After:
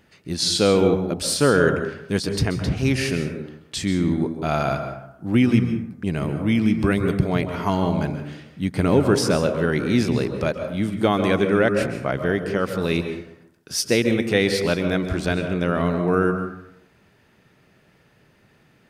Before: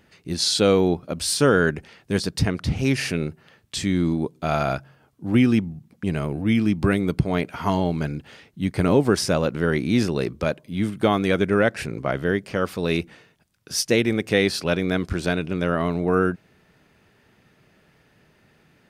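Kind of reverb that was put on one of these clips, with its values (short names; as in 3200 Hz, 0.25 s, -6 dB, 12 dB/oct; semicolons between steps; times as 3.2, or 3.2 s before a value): plate-style reverb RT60 0.76 s, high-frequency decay 0.45×, pre-delay 0.12 s, DRR 7 dB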